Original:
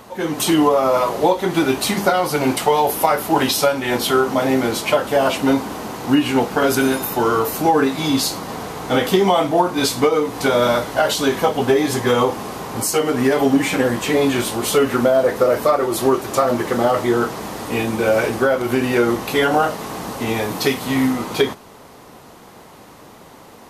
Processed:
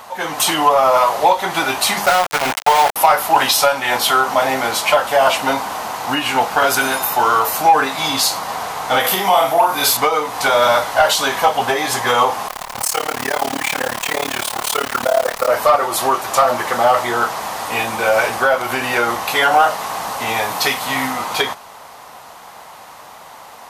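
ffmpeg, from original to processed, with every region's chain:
-filter_complex "[0:a]asettb=1/sr,asplit=3[s0][s1][s2];[s0]atrim=end=2.064[s3];[s1]atrim=start=2.06:end=2.96,asetpts=PTS-STARTPTS,afade=t=in:d=0.004:c=qsin,afade=t=out:st=0.896:d=0.004:c=qsin,adynamicequalizer=threshold=0.0282:dfrequency=940:dqfactor=4:tfrequency=940:tqfactor=4:attack=5:release=100:ratio=0.375:range=2:mode=cutabove:tftype=bell,adynamicsmooth=sensitivity=5:basefreq=850,aeval=exprs='val(0)*gte(abs(val(0)),0.126)':c=same[s4];[s2]atrim=start=2.956[s5];[s3][s4]acrossfade=d=0.004:c1=hsin:c2=qsin[s6];[s6][s5]acrossfade=d=0.004:c1=qsin:c2=hsin,asettb=1/sr,asplit=3[s7][s8][s9];[s7]atrim=end=9.004[s10];[s8]atrim=start=9:end=9.97,asetpts=PTS-STARTPTS,afade=t=in:d=0.004:c=qsin,afade=t=out:st=0.966:d=0.004:c=qsin,equalizer=f=12000:t=o:w=0.42:g=13.5,asplit=2[s11][s12];[s12]adelay=42,volume=0.668[s13];[s11][s13]amix=inputs=2:normalize=0,atrim=end_sample=42777,acompressor=threshold=0.126:ratio=1.5:attack=3.2:release=140:knee=1:detection=peak[s14];[s9]atrim=start=9.966[s15];[s10][s14]acrossfade=d=0.004:c1=hsin:c2=qsin[s16];[s16][s15]acrossfade=d=0.004:c1=qsin:c2=hsin,asettb=1/sr,asplit=3[s17][s18][s19];[s17]atrim=end=12.484[s20];[s18]atrim=start=12.48:end=15.48,asetpts=PTS-STARTPTS,afade=t=in:d=0.004:c=qsin,afade=t=out:st=2.996:d=0.004:c=qsin,acrusher=bits=5:dc=4:mix=0:aa=0.000001,tremolo=f=36:d=0.974[s21];[s19]atrim=start=15.476[s22];[s20][s21]acrossfade=d=0.004:c1=hsin:c2=qsin[s23];[s23][s22]acrossfade=d=0.004:c1=qsin:c2=hsin,lowshelf=f=520:t=q:w=1.5:g=-12,acontrast=63,volume=0.891"

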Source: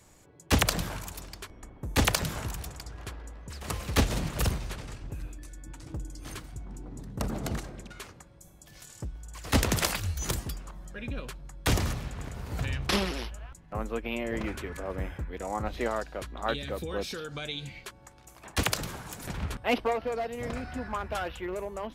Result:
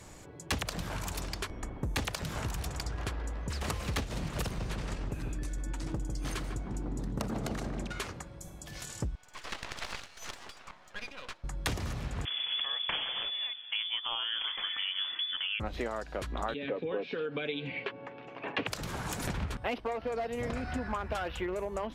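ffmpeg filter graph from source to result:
-filter_complex "[0:a]asettb=1/sr,asplit=3[s0][s1][s2];[s0]atrim=end=4.434[s3];[s1]atrim=start=4.43:end=7.85,asetpts=PTS-STARTPTS,afade=t=in:d=0.004:c=qsin,afade=t=out:st=3.416:d=0.004:c=qsin,equalizer=f=72:w=1.5:g=-8.5,asplit=2[s4][s5];[s5]adelay=150,lowpass=f=870:p=1,volume=0.562,asplit=2[s6][s7];[s7]adelay=150,lowpass=f=870:p=1,volume=0.54,asplit=2[s8][s9];[s9]adelay=150,lowpass=f=870:p=1,volume=0.54,asplit=2[s10][s11];[s11]adelay=150,lowpass=f=870:p=1,volume=0.54,asplit=2[s12][s13];[s13]adelay=150,lowpass=f=870:p=1,volume=0.54,asplit=2[s14][s15];[s15]adelay=150,lowpass=f=870:p=1,volume=0.54,asplit=2[s16][s17];[s17]adelay=150,lowpass=f=870:p=1,volume=0.54[s18];[s4][s6][s8][s10][s12][s14][s16][s18]amix=inputs=8:normalize=0,atrim=end_sample=150822[s19];[s2]atrim=start=7.846[s20];[s3][s19]acrossfade=d=0.004:c1=hsin:c2=qsin[s21];[s21][s20]acrossfade=d=0.004:c1=qsin:c2=hsin,asettb=1/sr,asplit=3[s22][s23][s24];[s22]atrim=end=9.154[s25];[s23]atrim=start=9.15:end=11.44,asetpts=PTS-STARTPTS,afade=t=in:d=0.004:c=qsin,afade=t=out:st=2.286:d=0.004:c=qsin,acompressor=threshold=0.02:ratio=6:attack=3.2:release=140:knee=1:detection=peak,highpass=790,lowpass=4700,aeval=exprs='max(val(0),0)':c=same[s26];[s24]atrim=start=11.436[s27];[s25][s26]acrossfade=d=0.004:c1=hsin:c2=qsin[s28];[s28][s27]acrossfade=d=0.004:c1=qsin:c2=hsin,asettb=1/sr,asplit=3[s29][s30][s31];[s29]atrim=end=12.254[s32];[s30]atrim=start=12.25:end=15.6,asetpts=PTS-STARTPTS,afade=t=in:d=0.004:c=qsin,afade=t=out:st=3.346:d=0.004:c=qsin,lowpass=f=3000:t=q:w=0.5098,lowpass=f=3000:t=q:w=0.6013,lowpass=f=3000:t=q:w=0.9,lowpass=f=3000:t=q:w=2.563,afreqshift=-3500,asubboost=boost=2.5:cutoff=70[s33];[s31]atrim=start=15.596[s34];[s32][s33]acrossfade=d=0.004:c1=hsin:c2=qsin[s35];[s35][s34]acrossfade=d=0.004:c1=qsin:c2=hsin,asettb=1/sr,asplit=3[s36][s37][s38];[s36]atrim=end=16.544[s39];[s37]atrim=start=16.54:end=18.67,asetpts=PTS-STARTPTS,afade=t=in:d=0.004:c=qsin,afade=t=out:st=2.126:d=0.004:c=qsin,highpass=f=130:w=0.5412,highpass=f=130:w=1.3066,equalizer=f=140:t=q:w=4:g=-7,equalizer=f=270:t=q:w=4:g=4,equalizer=f=470:t=q:w=4:g=9,equalizer=f=1300:t=q:w=4:g=-3,equalizer=f=2600:t=q:w=4:g=5,lowpass=f=3100:w=0.5412,lowpass=f=3100:w=1.3066,aecho=1:1:7.2:0.41,atrim=end_sample=93933[s40];[s38]atrim=start=18.666[s41];[s39][s40]acrossfade=d=0.004:c1=hsin:c2=qsin[s42];[s42][s41]acrossfade=d=0.004:c1=qsin:c2=hsin,highshelf=f=11000:g=-11,acompressor=threshold=0.0112:ratio=10,volume=2.51"

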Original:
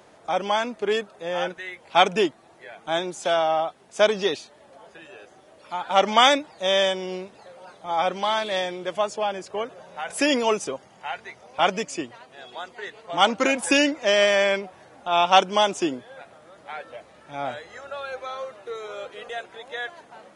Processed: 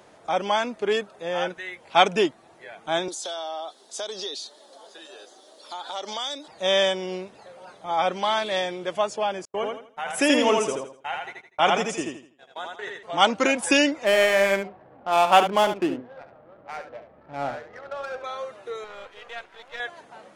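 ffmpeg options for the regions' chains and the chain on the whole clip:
-filter_complex "[0:a]asettb=1/sr,asplit=3[s0][s1][s2];[s0]atrim=end=3.084[s3];[s1]atrim=start=3.08:end=6.48,asetpts=PTS-STARTPTS,afade=t=in:d=0.004:c=qsin,afade=t=out:st=3.396:d=0.004:c=qsin,highpass=f=270:w=0.5412,highpass=f=270:w=1.3066,highshelf=f=3100:t=q:w=3:g=7,acompressor=threshold=0.0282:ratio=4:attack=3.2:release=140:knee=1:detection=peak[s4];[s2]atrim=start=6.476[s5];[s3][s4]acrossfade=d=0.004:c1=hsin:c2=qsin[s6];[s6][s5]acrossfade=d=0.004:c1=qsin:c2=hsin,asettb=1/sr,asplit=3[s7][s8][s9];[s7]atrim=end=9.454[s10];[s8]atrim=start=9.45:end=13.03,asetpts=PTS-STARTPTS,afade=t=in:d=0.004:c=qsin,afade=t=out:st=3.576:d=0.004:c=qsin,equalizer=f=4600:w=6.3:g=-9,agate=range=0.00501:threshold=0.00891:ratio=16:release=100:detection=peak,aecho=1:1:82|164|246|328:0.708|0.219|0.068|0.0211,atrim=end_sample=157878[s11];[s9]atrim=start=13.026[s12];[s10][s11]acrossfade=d=0.004:c1=hsin:c2=qsin[s13];[s13][s12]acrossfade=d=0.004:c1=qsin:c2=hsin,asettb=1/sr,asplit=3[s14][s15][s16];[s14]atrim=end=14.044[s17];[s15]atrim=start=14.04:end=18.24,asetpts=PTS-STARTPTS,afade=t=in:d=0.004:c=qsin,afade=t=out:st=4.196:d=0.004:c=qsin,lowpass=f=3000:w=0.5412,lowpass=f=3000:w=1.3066,adynamicsmooth=sensitivity=6.5:basefreq=790,aecho=1:1:71:0.335,atrim=end_sample=185220[s18];[s16]atrim=start=18.236[s19];[s17][s18]acrossfade=d=0.004:c1=hsin:c2=qsin[s20];[s20][s19]acrossfade=d=0.004:c1=qsin:c2=hsin,asettb=1/sr,asplit=3[s21][s22][s23];[s21]atrim=end=18.844[s24];[s22]atrim=start=18.84:end=19.8,asetpts=PTS-STARTPTS,afade=t=in:d=0.004:c=qsin,afade=t=out:st=0.956:d=0.004:c=qsin,aeval=exprs='if(lt(val(0),0),0.251*val(0),val(0))':c=same,lowpass=f=1600:p=1,tiltshelf=f=900:g=-7.5[s25];[s23]atrim=start=19.796[s26];[s24][s25]acrossfade=d=0.004:c1=hsin:c2=qsin[s27];[s27][s26]acrossfade=d=0.004:c1=qsin:c2=hsin"

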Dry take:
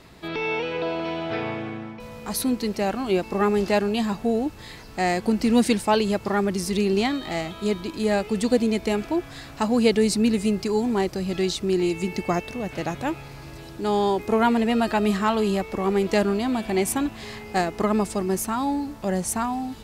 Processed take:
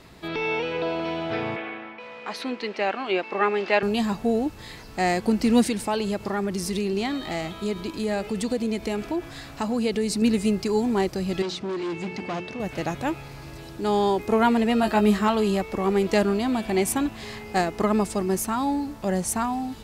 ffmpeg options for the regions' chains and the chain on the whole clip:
-filter_complex "[0:a]asettb=1/sr,asplit=3[s0][s1][s2];[s0]atrim=end=1.564[s3];[s1]atrim=start=1.56:end=3.83,asetpts=PTS-STARTPTS,afade=t=in:d=0.004:c=qsin,afade=t=out:st=2.266:d=0.004:c=qsin,highpass=390,lowpass=3300,equalizer=f=2400:w=0.89:g=7[s4];[s2]atrim=start=3.826[s5];[s3][s4]acrossfade=d=0.004:c1=hsin:c2=qsin[s6];[s6][s5]acrossfade=d=0.004:c1=qsin:c2=hsin,asettb=1/sr,asplit=3[s7][s8][s9];[s7]atrim=end=5.664[s10];[s8]atrim=start=5.66:end=10.22,asetpts=PTS-STARTPTS,afade=t=in:d=0.004:c=qsin,afade=t=out:st=4.556:d=0.004:c=qsin,acompressor=threshold=0.0562:ratio=2:attack=3.2:release=140:knee=1:detection=peak,aecho=1:1:104:0.0944,atrim=end_sample=201096[s11];[s9]atrim=start=10.216[s12];[s10][s11]acrossfade=d=0.004:c1=hsin:c2=qsin[s13];[s13][s12]acrossfade=d=0.004:c1=qsin:c2=hsin,asettb=1/sr,asplit=3[s14][s15][s16];[s14]atrim=end=11.424[s17];[s15]atrim=start=11.42:end=12.6,asetpts=PTS-STARTPTS,afade=t=in:d=0.004:c=qsin,afade=t=out:st=1.176:d=0.004:c=qsin,bandreject=f=60:t=h:w=6,bandreject=f=120:t=h:w=6,bandreject=f=180:t=h:w=6,bandreject=f=240:t=h:w=6,bandreject=f=300:t=h:w=6,bandreject=f=360:t=h:w=6,bandreject=f=420:t=h:w=6,bandreject=f=480:t=h:w=6,asoftclip=type=hard:threshold=0.0473,highpass=110,lowpass=5000[s18];[s16]atrim=start=12.596[s19];[s17][s18]acrossfade=d=0.004:c1=hsin:c2=qsin[s20];[s20][s19]acrossfade=d=0.004:c1=qsin:c2=hsin,asettb=1/sr,asplit=3[s21][s22][s23];[s21]atrim=end=14.814[s24];[s22]atrim=start=14.81:end=15.28,asetpts=PTS-STARTPTS,afade=t=in:d=0.004:c=qsin,afade=t=out:st=0.466:d=0.004:c=qsin,lowpass=f=2400:p=1,aemphasis=mode=production:type=50fm,asplit=2[s25][s26];[s26]adelay=19,volume=0.562[s27];[s25][s27]amix=inputs=2:normalize=0,atrim=end_sample=20727[s28];[s23]atrim=start=15.276[s29];[s24][s28]acrossfade=d=0.004:c1=hsin:c2=qsin[s30];[s30][s29]acrossfade=d=0.004:c1=qsin:c2=hsin"

